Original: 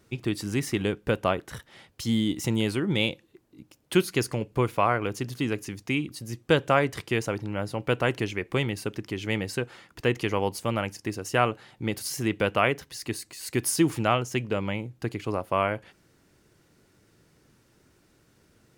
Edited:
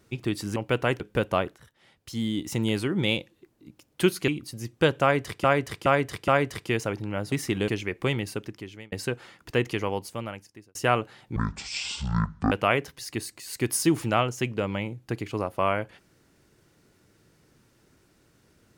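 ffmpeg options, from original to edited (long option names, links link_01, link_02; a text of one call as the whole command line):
ffmpeg -i in.wav -filter_complex "[0:a]asplit=14[link_01][link_02][link_03][link_04][link_05][link_06][link_07][link_08][link_09][link_10][link_11][link_12][link_13][link_14];[link_01]atrim=end=0.562[link_15];[link_02]atrim=start=7.738:end=8.182[link_16];[link_03]atrim=start=0.918:end=1.48,asetpts=PTS-STARTPTS,afade=type=out:start_time=0.558:duration=0.004:curve=hsin:silence=0.133352[link_17];[link_04]atrim=start=1.48:end=4.202,asetpts=PTS-STARTPTS,afade=type=in:duration=1.17:silence=0.133352[link_18];[link_05]atrim=start=5.958:end=7.122[link_19];[link_06]atrim=start=6.698:end=7.122[link_20];[link_07]atrim=start=6.698:end=7.122[link_21];[link_08]atrim=start=6.698:end=7.742[link_22];[link_09]atrim=start=0.558:end=0.922[link_23];[link_10]atrim=start=8.178:end=9.42,asetpts=PTS-STARTPTS,afade=type=out:start_time=0.602:duration=0.64[link_24];[link_11]atrim=start=9.42:end=11.25,asetpts=PTS-STARTPTS,afade=type=in:duration=0.004:curve=hsin,afade=type=out:start_time=0.69:duration=1.14[link_25];[link_12]atrim=start=11.25:end=11.864,asetpts=PTS-STARTPTS,afade=type=in:duration=0.004:curve=hsin[link_26];[link_13]atrim=start=11.86:end=12.45,asetpts=PTS-STARTPTS,asetrate=22491,aresample=44100[link_27];[link_14]atrim=start=12.446[link_28];[link_15][link_16]acrossfade=duration=0.004:curve1=hsin:curve2=hsin[link_29];[link_17][link_18]concat=n=2:v=0:a=1[link_30];[link_29][link_30]acrossfade=duration=0.004:curve1=hsin:curve2=hsin[link_31];[link_31][link_19]acrossfade=duration=0.004:curve1=hsin:curve2=hsin[link_32];[link_32][link_20]acrossfade=duration=0.004:curve1=hsin:curve2=hsin[link_33];[link_33][link_21]acrossfade=duration=0.004:curve1=hsin:curve2=hsin[link_34];[link_34][link_22]acrossfade=duration=0.004:curve1=hsin:curve2=hsin[link_35];[link_35][link_23]acrossfade=duration=0.004:curve1=hsin:curve2=hsin[link_36];[link_24][link_25][link_26]concat=n=3:v=0:a=1[link_37];[link_36][link_37]acrossfade=duration=0.004:curve1=hsin:curve2=hsin[link_38];[link_38][link_27]acrossfade=duration=0.004:curve1=hsin:curve2=hsin[link_39];[link_39][link_28]acrossfade=duration=0.004:curve1=hsin:curve2=hsin" out.wav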